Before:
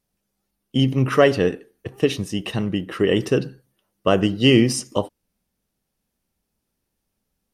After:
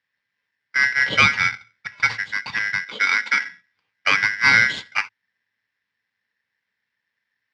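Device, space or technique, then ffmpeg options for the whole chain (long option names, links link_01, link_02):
ring modulator pedal into a guitar cabinet: -filter_complex "[0:a]aeval=exprs='val(0)*sgn(sin(2*PI*1800*n/s))':channel_layout=same,highpass=95,equalizer=frequency=110:width_type=q:width=4:gain=9,equalizer=frequency=210:width_type=q:width=4:gain=4,equalizer=frequency=360:width_type=q:width=4:gain=-7,equalizer=frequency=680:width_type=q:width=4:gain=-8,equalizer=frequency=1300:width_type=q:width=4:gain=-7,lowpass=frequency=4200:width=0.5412,lowpass=frequency=4200:width=1.3066,asettb=1/sr,asplit=3[link_01][link_02][link_03];[link_01]atrim=end=2.844[link_04];[link_02]atrim=start=2.84:end=3.47,asetpts=PTS-STARTPTS,afade=type=in:duration=0.004:curve=qsin,afade=type=out:start_time=0.626:duration=0.004:curve=qsin,highpass=frequency=240:width=0.5412,highpass=frequency=240:width=1.3066[link_05];[link_03]atrim=start=3.466[link_06];[link_04][link_05]acrossfade=duration=0.004:curve1=hsin:curve2=qsin[link_07];[link_07][link_06]acrossfade=duration=0.004:curve1=qsin:curve2=hsin,volume=1.5dB"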